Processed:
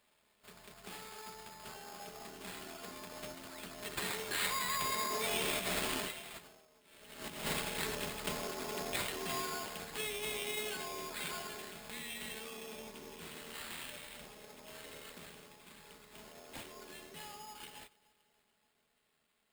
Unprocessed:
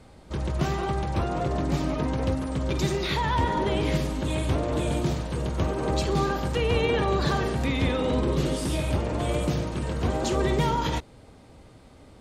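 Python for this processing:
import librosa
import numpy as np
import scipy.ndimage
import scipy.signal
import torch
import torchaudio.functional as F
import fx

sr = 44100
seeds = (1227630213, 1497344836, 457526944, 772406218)

y = fx.doppler_pass(x, sr, speed_mps=38, closest_m=3.9, pass_at_s=4.21)
y = fx.stretch_grains(y, sr, factor=1.6, grain_ms=25.0)
y = fx.riaa(y, sr, side='recording')
y = fx.echo_feedback(y, sr, ms=287, feedback_pct=56, wet_db=-23.5)
y = fx.over_compress(y, sr, threshold_db=-48.0, ratio=-0.5)
y = fx.sample_hold(y, sr, seeds[0], rate_hz=5900.0, jitter_pct=0)
y = fx.high_shelf(y, sr, hz=2500.0, db=8.0)
y = F.gain(torch.from_numpy(y), 6.5).numpy()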